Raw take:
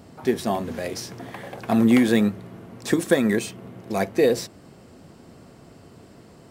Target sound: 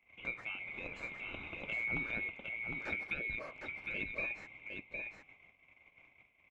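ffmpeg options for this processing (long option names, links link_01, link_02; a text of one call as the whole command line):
ffmpeg -i in.wav -af "afftfilt=real='real(if(lt(b,920),b+92*(1-2*mod(floor(b/92),2)),b),0)':imag='imag(if(lt(b,920),b+92*(1-2*mod(floor(b/92),2)),b),0)':win_size=2048:overlap=0.75,agate=range=-19dB:threshold=-45dB:ratio=16:detection=peak,lowpass=1200,acompressor=threshold=-47dB:ratio=2,aecho=1:1:758:0.596,volume=2dB" out.wav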